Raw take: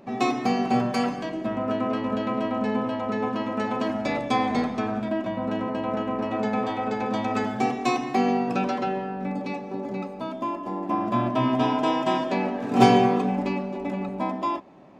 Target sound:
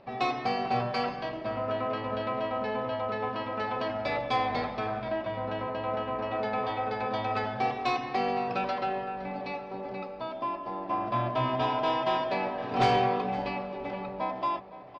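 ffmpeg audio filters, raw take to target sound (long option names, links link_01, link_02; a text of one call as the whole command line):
ffmpeg -i in.wav -filter_complex "[0:a]firequalizer=gain_entry='entry(100,0);entry(220,-14);entry(510,-2);entry(4900,-1);entry(7100,-27)':delay=0.05:min_phase=1,asoftclip=type=tanh:threshold=-17.5dB,asplit=2[link_01][link_02];[link_02]adelay=514,lowpass=frequency=4400:poles=1,volume=-16dB,asplit=2[link_03][link_04];[link_04]adelay=514,lowpass=frequency=4400:poles=1,volume=0.54,asplit=2[link_05][link_06];[link_06]adelay=514,lowpass=frequency=4400:poles=1,volume=0.54,asplit=2[link_07][link_08];[link_08]adelay=514,lowpass=frequency=4400:poles=1,volume=0.54,asplit=2[link_09][link_10];[link_10]adelay=514,lowpass=frequency=4400:poles=1,volume=0.54[link_11];[link_01][link_03][link_05][link_07][link_09][link_11]amix=inputs=6:normalize=0" out.wav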